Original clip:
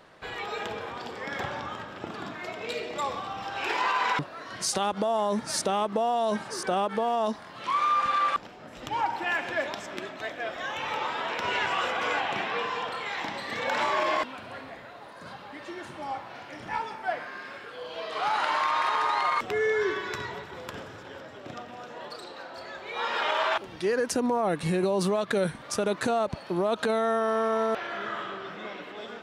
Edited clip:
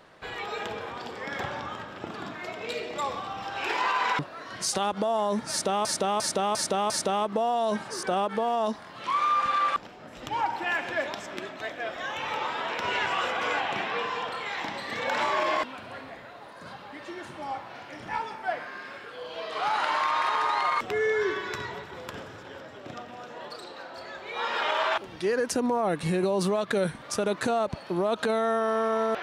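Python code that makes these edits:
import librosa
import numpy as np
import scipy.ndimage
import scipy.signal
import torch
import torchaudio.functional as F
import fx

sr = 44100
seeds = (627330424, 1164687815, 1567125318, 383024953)

y = fx.edit(x, sr, fx.repeat(start_s=5.5, length_s=0.35, count=5), tone=tone)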